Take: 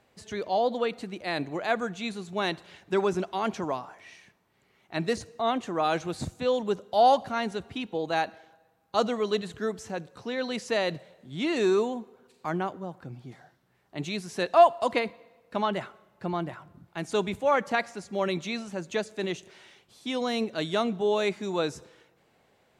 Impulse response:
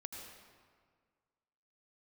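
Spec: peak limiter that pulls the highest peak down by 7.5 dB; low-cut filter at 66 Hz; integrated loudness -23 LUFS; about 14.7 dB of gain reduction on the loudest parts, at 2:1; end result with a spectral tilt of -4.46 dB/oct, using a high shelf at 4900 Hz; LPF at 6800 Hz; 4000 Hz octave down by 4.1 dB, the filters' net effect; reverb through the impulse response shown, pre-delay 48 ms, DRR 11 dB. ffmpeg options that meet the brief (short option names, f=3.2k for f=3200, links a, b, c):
-filter_complex "[0:a]highpass=66,lowpass=6.8k,equalizer=f=4k:t=o:g=-7,highshelf=f=4.9k:g=6,acompressor=threshold=-40dB:ratio=2,alimiter=level_in=4dB:limit=-24dB:level=0:latency=1,volume=-4dB,asplit=2[a][b];[1:a]atrim=start_sample=2205,adelay=48[c];[b][c]afir=irnorm=-1:irlink=0,volume=-8dB[d];[a][d]amix=inputs=2:normalize=0,volume=16.5dB"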